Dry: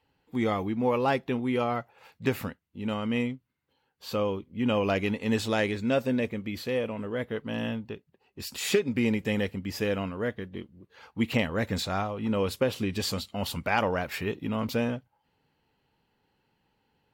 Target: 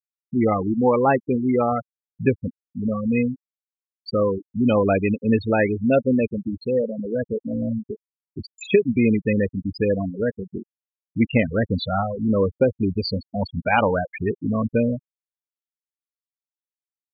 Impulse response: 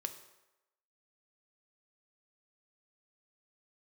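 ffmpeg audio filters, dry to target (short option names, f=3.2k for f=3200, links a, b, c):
-af "acompressor=mode=upward:threshold=-31dB:ratio=2.5,afftfilt=real='re*gte(hypot(re,im),0.0891)':imag='im*gte(hypot(re,im),0.0891)':win_size=1024:overlap=0.75,volume=8dB"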